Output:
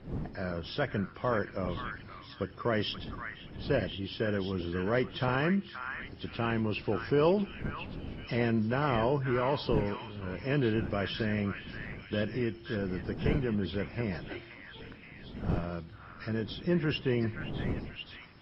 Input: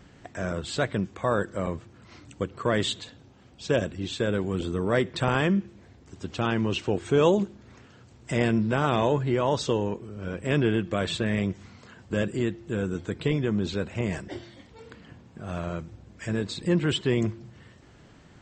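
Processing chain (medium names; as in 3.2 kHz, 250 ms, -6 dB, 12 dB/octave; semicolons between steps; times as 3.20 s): knee-point frequency compression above 2.4 kHz 1.5:1; wind noise 230 Hz -37 dBFS; repeats whose band climbs or falls 526 ms, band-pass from 1.6 kHz, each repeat 0.7 oct, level -3 dB; trim -5 dB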